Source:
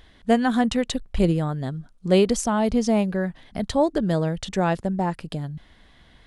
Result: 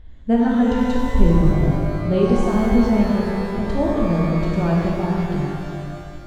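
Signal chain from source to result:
RIAA equalisation playback
reverb with rising layers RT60 2.2 s, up +12 semitones, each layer −8 dB, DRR −3 dB
level −7.5 dB

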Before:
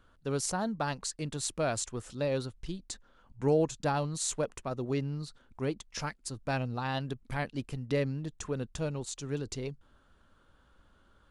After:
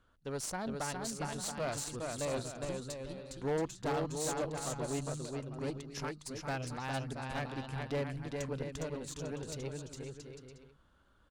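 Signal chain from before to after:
bouncing-ball delay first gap 410 ms, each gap 0.65×, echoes 5
harmonic generator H 2 −8 dB, 6 −25 dB, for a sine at −14.5 dBFS
asymmetric clip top −21.5 dBFS
level −6 dB

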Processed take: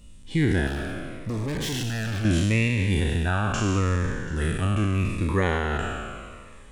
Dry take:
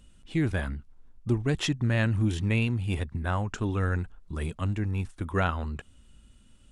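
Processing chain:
peak hold with a decay on every bin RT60 2.01 s
in parallel at +3 dB: brickwall limiter −18 dBFS, peak gain reduction 9 dB
0:00.67–0:02.25: on the sum: gain into a clipping stage and back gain 23 dB
delay with a high-pass on its return 735 ms, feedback 51%, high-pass 2,000 Hz, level −19 dB
phaser whose notches keep moving one way falling 0.78 Hz
level −3 dB

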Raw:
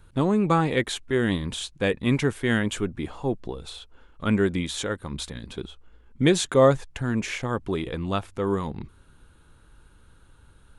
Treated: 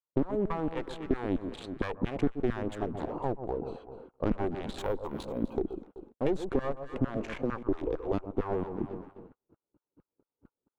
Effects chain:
adaptive Wiener filter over 25 samples
speech leveller within 5 dB 2 s
0:02.72–0:03.60: bass and treble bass +7 dB, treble +5 dB
0:07.40–0:08.12: high-pass filter 150 Hz → 390 Hz 24 dB per octave
asymmetric clip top −27 dBFS
auto-filter high-pass saw down 4.4 Hz 250–1,500 Hz
0:04.78–0:05.54: bad sample-rate conversion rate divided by 3×, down none, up hold
harmonic generator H 6 −23 dB, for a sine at −5 dBFS
delay that swaps between a low-pass and a high-pass 126 ms, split 1,100 Hz, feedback 56%, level −12.5 dB
downward compressor 6 to 1, threshold −35 dBFS, peak gain reduction 21 dB
spectral tilt −4 dB per octave
noise gate −51 dBFS, range −37 dB
level +2 dB

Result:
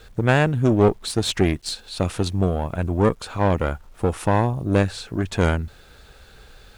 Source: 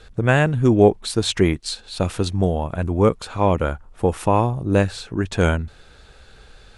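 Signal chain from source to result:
one-sided soft clipper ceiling −18 dBFS
bit-depth reduction 10 bits, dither none

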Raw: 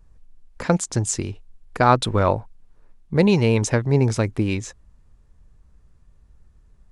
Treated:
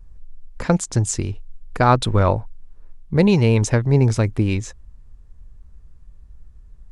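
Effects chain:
low-shelf EQ 87 Hz +11.5 dB

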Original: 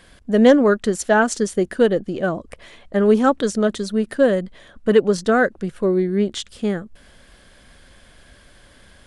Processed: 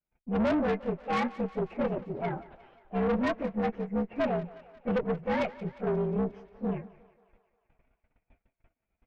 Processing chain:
partials spread apart or drawn together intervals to 121%
noise gate −49 dBFS, range −32 dB
low-pass filter 2,100 Hz 24 dB per octave
tube saturation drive 19 dB, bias 0.45
feedback echo with a high-pass in the loop 178 ms, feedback 64%, high-pass 330 Hz, level −18 dB
level −4.5 dB

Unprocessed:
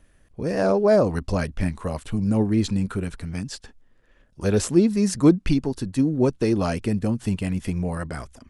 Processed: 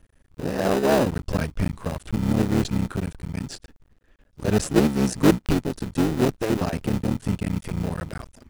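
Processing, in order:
sub-harmonics by changed cycles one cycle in 3, muted
in parallel at −8 dB: decimation without filtering 40×
on the sum: level −1.5 dB

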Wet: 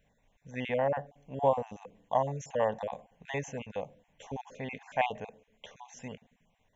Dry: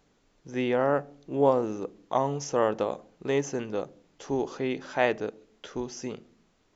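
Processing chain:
time-frequency cells dropped at random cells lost 26%
phaser with its sweep stopped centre 1,300 Hz, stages 6

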